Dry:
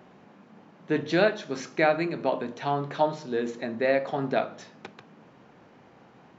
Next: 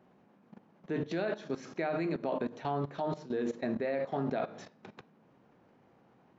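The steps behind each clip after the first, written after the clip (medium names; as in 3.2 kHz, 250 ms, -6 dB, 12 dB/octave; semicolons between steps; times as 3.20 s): tilt shelf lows +3 dB, about 1.2 kHz; de-hum 148.2 Hz, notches 38; level held to a coarse grid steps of 16 dB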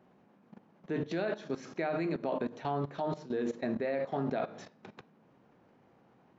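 no audible change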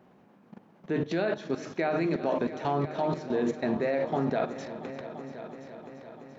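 multi-head delay 341 ms, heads all three, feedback 59%, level -17.5 dB; trim +5 dB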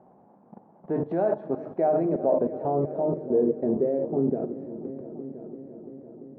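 low-pass sweep 800 Hz -> 360 Hz, 1.20–4.56 s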